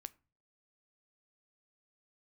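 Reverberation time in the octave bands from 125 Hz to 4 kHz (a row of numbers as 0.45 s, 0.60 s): 0.65 s, 0.45 s, 0.45 s, 0.35 s, 0.30 s, 0.20 s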